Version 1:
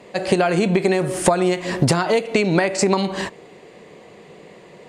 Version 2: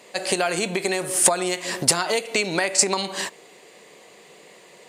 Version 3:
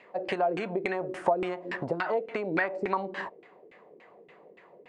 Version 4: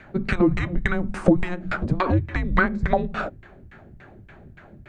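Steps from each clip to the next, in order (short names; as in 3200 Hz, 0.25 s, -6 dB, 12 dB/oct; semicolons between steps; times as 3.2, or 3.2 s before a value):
RIAA curve recording; gain -3.5 dB
LFO low-pass saw down 3.5 Hz 300–2400 Hz; gain -7.5 dB
frequency shift -360 Hz; gain +8.5 dB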